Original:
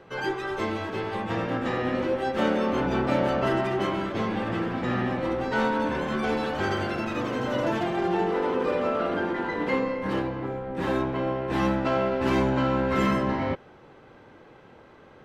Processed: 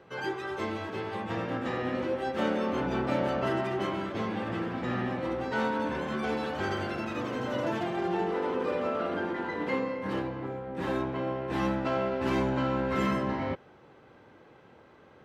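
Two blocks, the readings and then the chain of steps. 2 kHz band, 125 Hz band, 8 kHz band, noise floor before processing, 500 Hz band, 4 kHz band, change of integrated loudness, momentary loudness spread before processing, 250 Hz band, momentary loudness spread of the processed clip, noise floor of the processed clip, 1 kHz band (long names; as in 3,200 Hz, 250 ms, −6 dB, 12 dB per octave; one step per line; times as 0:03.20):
−4.5 dB, −4.5 dB, can't be measured, −52 dBFS, −4.5 dB, −4.5 dB, −4.5 dB, 6 LU, −4.5 dB, 6 LU, −56 dBFS, −4.5 dB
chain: high-pass filter 51 Hz
level −4.5 dB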